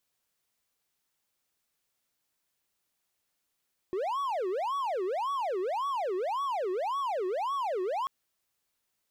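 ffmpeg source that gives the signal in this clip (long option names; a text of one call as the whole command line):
ffmpeg -f lavfi -i "aevalsrc='0.0473*(1-4*abs(mod((746*t-384/(2*PI*1.8)*sin(2*PI*1.8*t))+0.25,1)-0.5))':duration=4.14:sample_rate=44100" out.wav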